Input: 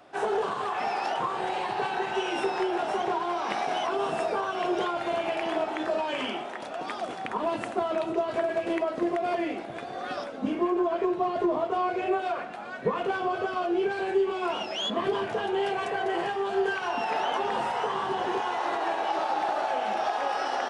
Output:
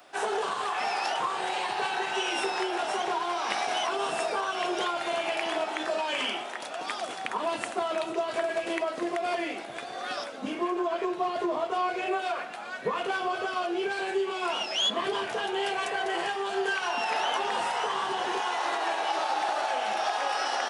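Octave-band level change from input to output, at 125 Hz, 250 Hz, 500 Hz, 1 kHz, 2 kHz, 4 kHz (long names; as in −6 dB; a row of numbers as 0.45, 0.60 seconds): −8.0, −4.5, −3.0, −0.5, +2.5, +5.0 decibels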